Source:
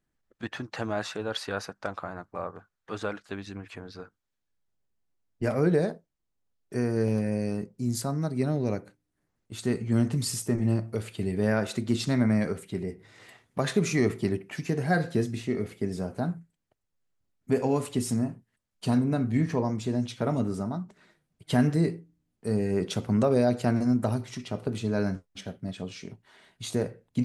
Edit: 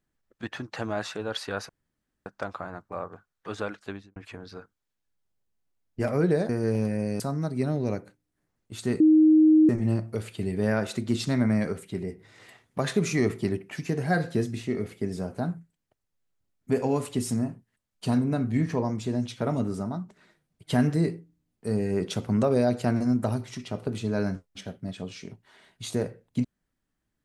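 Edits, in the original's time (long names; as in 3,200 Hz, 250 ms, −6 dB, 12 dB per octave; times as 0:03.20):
0:01.69: splice in room tone 0.57 s
0:03.32–0:03.59: fade out and dull
0:05.92–0:06.82: remove
0:07.53–0:08.00: remove
0:09.80–0:10.49: beep over 312 Hz −13.5 dBFS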